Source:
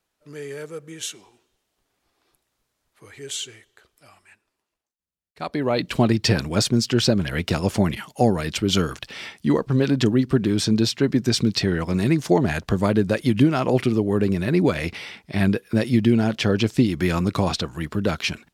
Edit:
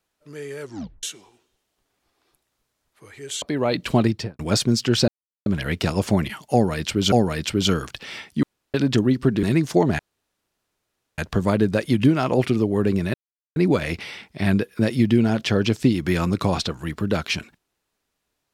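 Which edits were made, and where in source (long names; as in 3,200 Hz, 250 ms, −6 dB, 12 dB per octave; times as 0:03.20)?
0:00.61: tape stop 0.42 s
0:03.42–0:05.47: remove
0:06.08–0:06.44: fade out and dull
0:07.13: splice in silence 0.38 s
0:08.20–0:08.79: repeat, 2 plays
0:09.51–0:09.82: fill with room tone
0:10.51–0:11.98: remove
0:12.54: splice in room tone 1.19 s
0:14.50: splice in silence 0.42 s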